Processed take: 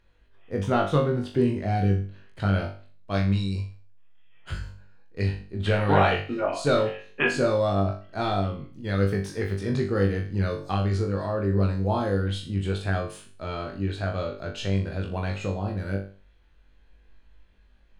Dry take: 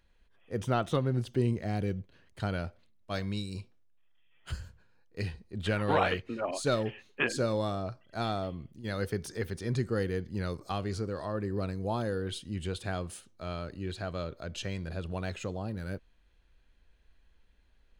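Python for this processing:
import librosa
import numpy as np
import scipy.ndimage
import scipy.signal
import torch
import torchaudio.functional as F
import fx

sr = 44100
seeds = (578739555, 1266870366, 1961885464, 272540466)

y = fx.lowpass(x, sr, hz=3300.0, slope=6)
y = fx.room_flutter(y, sr, wall_m=3.5, rt60_s=0.39)
y = y * 10.0 ** (4.5 / 20.0)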